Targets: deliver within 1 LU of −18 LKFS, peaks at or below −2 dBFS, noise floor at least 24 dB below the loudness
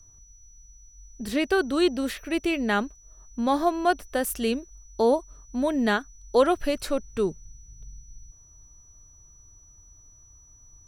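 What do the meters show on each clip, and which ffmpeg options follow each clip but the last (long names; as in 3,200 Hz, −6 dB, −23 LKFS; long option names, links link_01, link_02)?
interfering tone 5,900 Hz; level of the tone −53 dBFS; integrated loudness −26.0 LKFS; sample peak −9.0 dBFS; target loudness −18.0 LKFS
→ -af "bandreject=frequency=5900:width=30"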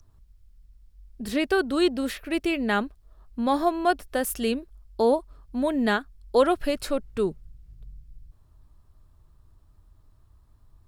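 interfering tone none found; integrated loudness −26.0 LKFS; sample peak −9.0 dBFS; target loudness −18.0 LKFS
→ -af "volume=8dB,alimiter=limit=-2dB:level=0:latency=1"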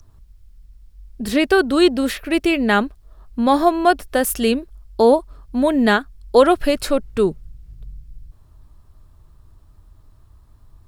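integrated loudness −18.0 LKFS; sample peak −2.0 dBFS; background noise floor −51 dBFS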